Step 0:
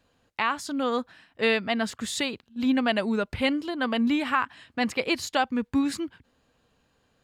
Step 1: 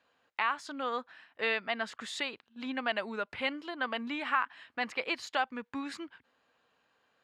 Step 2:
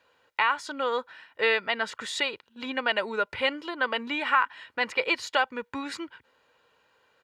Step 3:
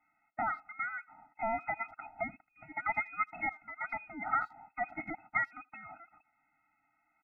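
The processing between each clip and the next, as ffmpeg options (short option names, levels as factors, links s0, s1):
-filter_complex "[0:a]asplit=2[s0][s1];[s1]acompressor=threshold=0.0224:ratio=6,volume=0.944[s2];[s0][s2]amix=inputs=2:normalize=0,bandpass=f=1500:t=q:w=0.65:csg=0,volume=0.531"
-af "aecho=1:1:2.1:0.46,volume=2"
-filter_complex "[0:a]lowpass=f=2300:t=q:w=0.5098,lowpass=f=2300:t=q:w=0.6013,lowpass=f=2300:t=q:w=0.9,lowpass=f=2300:t=q:w=2.563,afreqshift=-2700,asplit=2[s0][s1];[s1]adelay=80,highpass=300,lowpass=3400,asoftclip=type=hard:threshold=0.119,volume=0.0447[s2];[s0][s2]amix=inputs=2:normalize=0,afftfilt=real='re*eq(mod(floor(b*sr/1024/310),2),0)':imag='im*eq(mod(floor(b*sr/1024/310),2),0)':win_size=1024:overlap=0.75,volume=0.596"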